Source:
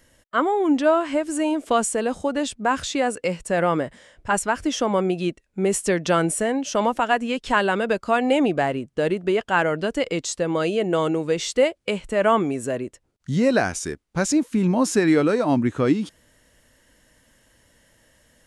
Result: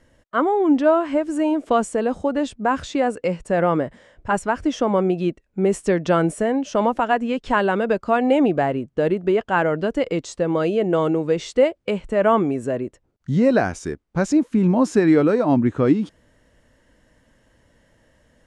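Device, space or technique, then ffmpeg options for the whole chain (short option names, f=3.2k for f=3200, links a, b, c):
through cloth: -af "lowpass=9k,highshelf=f=2k:g=-11,volume=3dB"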